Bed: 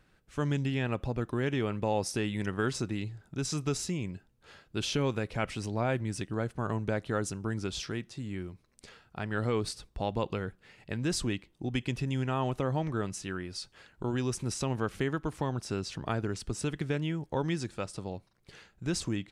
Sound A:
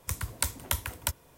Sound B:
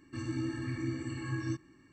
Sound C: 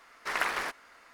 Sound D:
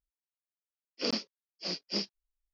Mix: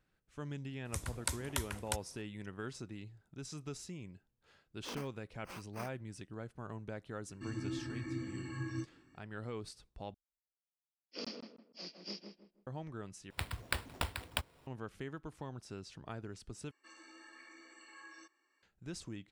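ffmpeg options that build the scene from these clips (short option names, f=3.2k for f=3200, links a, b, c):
-filter_complex "[1:a]asplit=2[a][b];[4:a]asplit=2[c][d];[2:a]asplit=2[e][f];[0:a]volume=-13dB[g];[a]lowpass=f=11k:w=0.5412,lowpass=f=11k:w=1.3066[h];[c]acrusher=samples=12:mix=1:aa=0.000001[i];[d]asplit=2[j][k];[k]adelay=159,lowpass=f=1.5k:p=1,volume=-4dB,asplit=2[l][m];[m]adelay=159,lowpass=f=1.5k:p=1,volume=0.33,asplit=2[n][o];[o]adelay=159,lowpass=f=1.5k:p=1,volume=0.33,asplit=2[p][q];[q]adelay=159,lowpass=f=1.5k:p=1,volume=0.33[r];[j][l][n][p][r]amix=inputs=5:normalize=0[s];[b]acrusher=samples=7:mix=1:aa=0.000001[t];[f]highpass=f=520:w=0.5412,highpass=f=520:w=1.3066[u];[g]asplit=4[v][w][x][y];[v]atrim=end=10.144[z];[s]atrim=end=2.53,asetpts=PTS-STARTPTS,volume=-12dB[aa];[w]atrim=start=12.666:end=13.304[ab];[t]atrim=end=1.37,asetpts=PTS-STARTPTS,volume=-7dB[ac];[x]atrim=start=14.666:end=16.714[ad];[u]atrim=end=1.92,asetpts=PTS-STARTPTS,volume=-9dB[ae];[y]atrim=start=18.626[af];[h]atrim=end=1.37,asetpts=PTS-STARTPTS,volume=-6.5dB,afade=t=in:d=0.004:c=hsin,afade=t=out:st=1.366:d=0.004:c=hsin,adelay=850[ag];[i]atrim=end=2.53,asetpts=PTS-STARTPTS,volume=-15dB,afade=t=in:d=0.004:c=hsin,afade=t=out:st=2.526:d=0.004:c=hsin,adelay=3840[ah];[e]atrim=end=1.92,asetpts=PTS-STARTPTS,volume=-5dB,afade=t=in:d=0.004:c=hsin,afade=t=out:st=1.916:d=0.004:c=hsin,adelay=7280[ai];[z][aa]acrossfade=d=0.004:c1=hsin:c2=hsin[aj];[aj][ab]acrossfade=d=0.004:c1=hsin:c2=hsin[ak];[ak][ac]acrossfade=d=0.004:c1=hsin:c2=hsin[al];[al][ad]acrossfade=d=0.004:c1=hsin:c2=hsin[am];[am][ae]acrossfade=d=0.004:c1=hsin:c2=hsin[an];[an][af]acrossfade=d=0.004:c1=hsin:c2=hsin[ao];[ao][ag][ah][ai]amix=inputs=4:normalize=0"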